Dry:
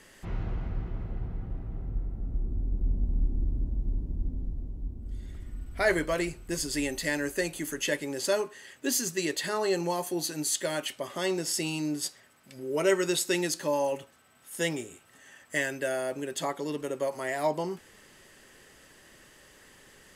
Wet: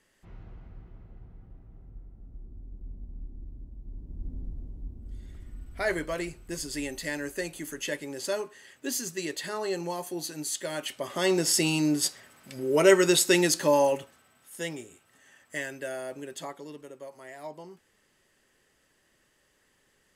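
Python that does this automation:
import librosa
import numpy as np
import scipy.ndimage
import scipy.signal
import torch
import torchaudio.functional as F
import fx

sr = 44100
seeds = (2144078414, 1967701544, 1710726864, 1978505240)

y = fx.gain(x, sr, db=fx.line((3.79, -14.0), (4.36, -3.5), (10.65, -3.5), (11.4, 6.0), (13.8, 6.0), (14.58, -5.0), (16.28, -5.0), (16.97, -13.0)))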